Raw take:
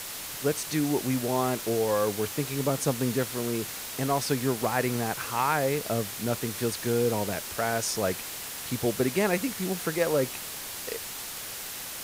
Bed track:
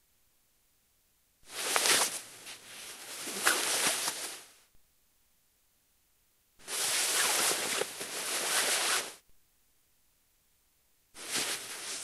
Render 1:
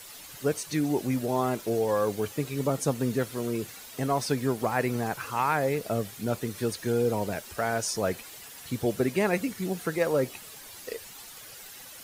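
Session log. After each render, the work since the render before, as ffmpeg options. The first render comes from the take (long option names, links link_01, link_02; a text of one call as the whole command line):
ffmpeg -i in.wav -af "afftdn=noise_reduction=11:noise_floor=-38" out.wav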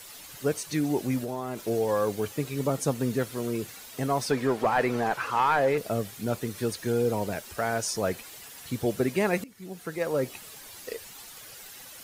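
ffmpeg -i in.wav -filter_complex "[0:a]asettb=1/sr,asplit=3[link_01][link_02][link_03];[link_01]atrim=end=1.234[link_04];[link_02]atrim=start=1.23:end=1.64,asetpts=PTS-STARTPTS,afade=type=in:duration=0.004:curve=qsin,afade=type=out:start_time=0.406:duration=0.004:curve=qsin,acompressor=threshold=-28dB:ratio=6:attack=3.2:release=140:knee=1:detection=peak[link_05];[link_03]atrim=start=1.636[link_06];[link_04][link_05]acrossfade=duration=0.004:curve1=hsin:curve2=qsin[link_07];[link_07][link_06]acrossfade=duration=0.004:curve1=qsin:curve2=hsin,asettb=1/sr,asplit=3[link_08][link_09][link_10];[link_08]atrim=end=4.304[link_11];[link_09]atrim=start=4.3:end=5.78,asetpts=PTS-STARTPTS,afade=type=in:duration=0.004:curve=qsin,afade=type=out:start_time=1.476:duration=0.004:curve=qsin,asplit=2[link_12][link_13];[link_13]highpass=frequency=720:poles=1,volume=15dB,asoftclip=type=tanh:threshold=-12dB[link_14];[link_12][link_14]amix=inputs=2:normalize=0,lowpass=frequency=1600:poles=1,volume=-6dB[link_15];[link_10]atrim=start=5.776[link_16];[link_11][link_15]acrossfade=duration=0.004:curve1=hsin:curve2=qsin[link_17];[link_17][link_16]acrossfade=duration=0.004:curve1=qsin:curve2=hsin,asplit=2[link_18][link_19];[link_18]atrim=end=9.44,asetpts=PTS-STARTPTS,afade=type=out:start_time=9.436:duration=0.004:curve=hsin:silence=0.0891251[link_20];[link_19]atrim=start=9.44,asetpts=PTS-STARTPTS,afade=type=in:duration=0.92:silence=0.0891251[link_21];[link_20][link_21]concat=n=2:v=0:a=1" out.wav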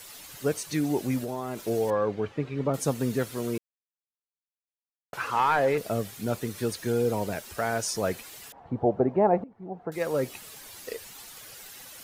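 ffmpeg -i in.wav -filter_complex "[0:a]asettb=1/sr,asplit=3[link_01][link_02][link_03];[link_01]atrim=end=1.904[link_04];[link_02]atrim=start=1.9:end=2.74,asetpts=PTS-STARTPTS,afade=type=in:duration=0.004:curve=qsin,afade=type=out:start_time=0.836:duration=0.004:curve=qsin,lowpass=2400[link_05];[link_03]atrim=start=2.736[link_06];[link_04][link_05]acrossfade=duration=0.004:curve1=hsin:curve2=qsin[link_07];[link_07][link_06]acrossfade=duration=0.004:curve1=qsin:curve2=hsin,asettb=1/sr,asplit=3[link_08][link_09][link_10];[link_08]atrim=end=8.524[link_11];[link_09]atrim=start=8.52:end=9.92,asetpts=PTS-STARTPTS,afade=type=in:duration=0.004:curve=qsin,afade=type=out:start_time=1.396:duration=0.004:curve=qsin,lowpass=frequency=790:width_type=q:width=3.5[link_12];[link_10]atrim=start=9.916[link_13];[link_11][link_12]acrossfade=duration=0.004:curve1=hsin:curve2=qsin[link_14];[link_14][link_13]acrossfade=duration=0.004:curve1=qsin:curve2=hsin,asplit=3[link_15][link_16][link_17];[link_15]atrim=end=3.58,asetpts=PTS-STARTPTS,afade=type=out:start_time=3.576:duration=0.004:curve=hsin[link_18];[link_16]atrim=start=3.58:end=5.13,asetpts=PTS-STARTPTS,volume=0[link_19];[link_17]atrim=start=5.13,asetpts=PTS-STARTPTS,afade=type=in:duration=0.004:curve=hsin[link_20];[link_18][link_19][link_20]concat=n=3:v=0:a=1" out.wav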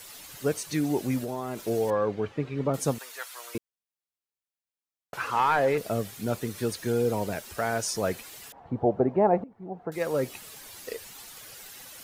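ffmpeg -i in.wav -filter_complex "[0:a]asettb=1/sr,asplit=3[link_01][link_02][link_03];[link_01]atrim=end=2.984[link_04];[link_02]atrim=start=2.98:end=3.55,asetpts=PTS-STARTPTS,afade=type=in:duration=0.004:curve=qsin,afade=type=out:start_time=0.566:duration=0.004:curve=qsin,highpass=frequency=820:width=0.5412,highpass=frequency=820:width=1.3066[link_05];[link_03]atrim=start=3.546[link_06];[link_04][link_05]acrossfade=duration=0.004:curve1=hsin:curve2=qsin[link_07];[link_07][link_06]acrossfade=duration=0.004:curve1=qsin:curve2=hsin" out.wav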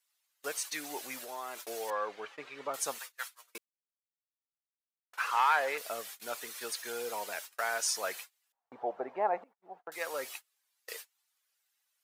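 ffmpeg -i in.wav -af "agate=range=-34dB:threshold=-39dB:ratio=16:detection=peak,highpass=980" out.wav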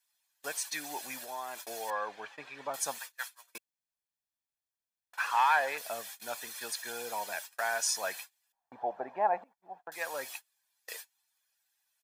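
ffmpeg -i in.wav -af "bandreject=frequency=2700:width=26,aecho=1:1:1.2:0.46" out.wav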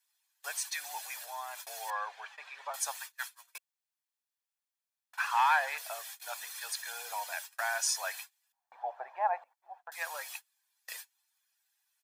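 ffmpeg -i in.wav -af "highpass=frequency=710:width=0.5412,highpass=frequency=710:width=1.3066" out.wav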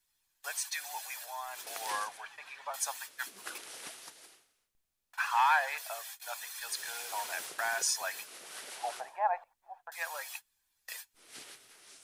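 ffmpeg -i in.wav -i bed.wav -filter_complex "[1:a]volume=-16.5dB[link_01];[0:a][link_01]amix=inputs=2:normalize=0" out.wav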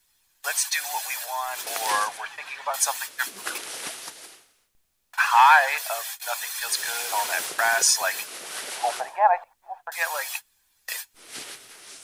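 ffmpeg -i in.wav -af "volume=11.5dB" out.wav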